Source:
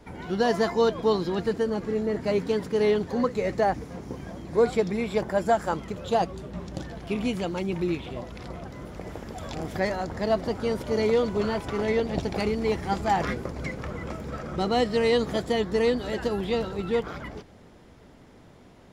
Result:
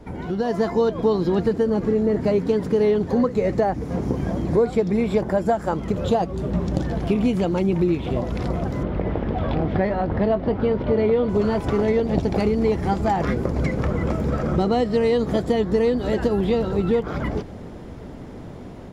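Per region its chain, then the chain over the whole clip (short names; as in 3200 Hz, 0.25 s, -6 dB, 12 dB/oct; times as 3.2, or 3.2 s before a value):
8.83–11.29 CVSD 64 kbps + LPF 3500 Hz 24 dB/oct + doubler 20 ms -12.5 dB
whole clip: compressor 3:1, threshold -34 dBFS; tilt shelf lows +5 dB; AGC gain up to 7 dB; gain +4 dB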